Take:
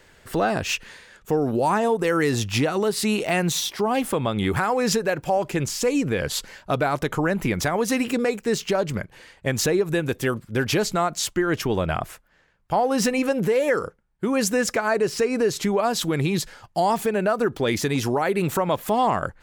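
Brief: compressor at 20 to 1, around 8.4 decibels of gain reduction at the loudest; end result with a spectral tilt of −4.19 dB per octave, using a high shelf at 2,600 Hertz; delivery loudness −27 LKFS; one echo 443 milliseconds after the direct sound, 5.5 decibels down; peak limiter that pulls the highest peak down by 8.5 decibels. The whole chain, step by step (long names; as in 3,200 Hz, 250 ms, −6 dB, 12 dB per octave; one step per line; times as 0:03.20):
high-shelf EQ 2,600 Hz +8.5 dB
downward compressor 20 to 1, threshold −23 dBFS
brickwall limiter −19.5 dBFS
single-tap delay 443 ms −5.5 dB
level +1.5 dB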